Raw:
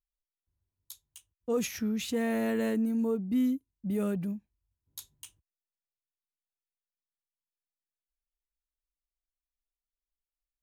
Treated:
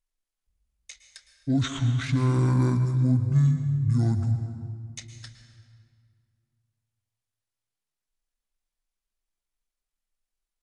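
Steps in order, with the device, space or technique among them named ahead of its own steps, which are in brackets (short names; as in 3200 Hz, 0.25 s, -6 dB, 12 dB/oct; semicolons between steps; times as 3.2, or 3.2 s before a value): monster voice (pitch shift -10 st; low shelf 150 Hz +6 dB; reverb RT60 2.2 s, pre-delay 0.106 s, DRR 7.5 dB); gain +3.5 dB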